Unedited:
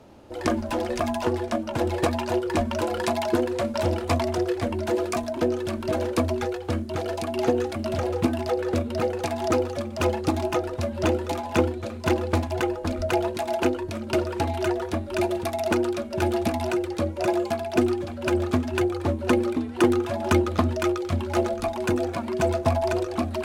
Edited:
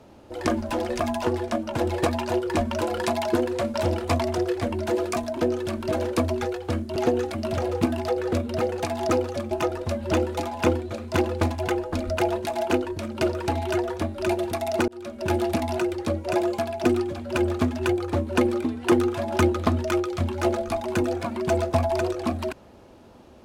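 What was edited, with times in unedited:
6.96–7.37 s: delete
9.92–10.43 s: delete
15.80–16.19 s: fade in

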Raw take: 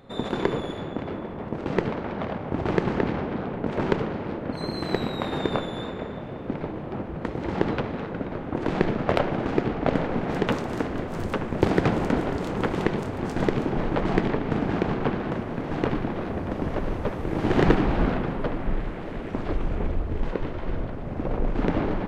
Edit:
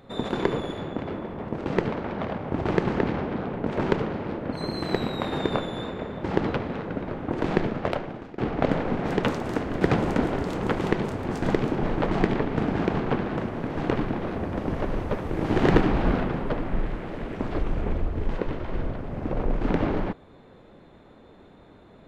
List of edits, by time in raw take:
6.24–7.48 s: delete
8.76–9.62 s: fade out, to -23.5 dB
11.05–11.75 s: delete

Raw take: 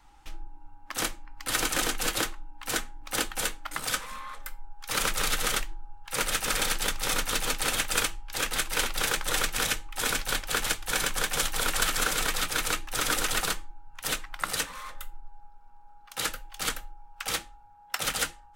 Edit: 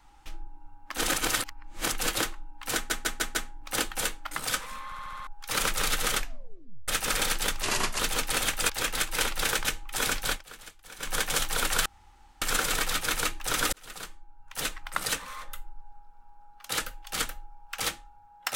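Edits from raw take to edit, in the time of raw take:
0.98–1.92 s: reverse
2.75 s: stutter 0.15 s, 5 plays
4.25 s: stutter in place 0.07 s, 6 plays
5.57 s: tape stop 0.71 s
7.02–7.31 s: speed 77%
8.01–8.28 s: delete
9.23–9.68 s: delete
10.34–11.15 s: dip -18.5 dB, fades 0.13 s
11.89 s: insert room tone 0.56 s
13.20–14.28 s: fade in

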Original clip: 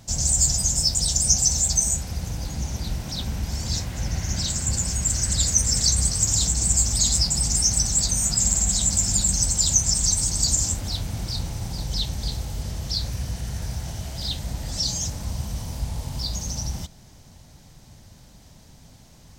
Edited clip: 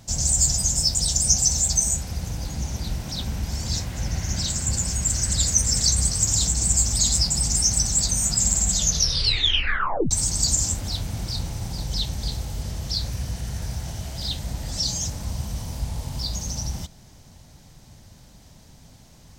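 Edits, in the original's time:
8.70 s: tape stop 1.41 s

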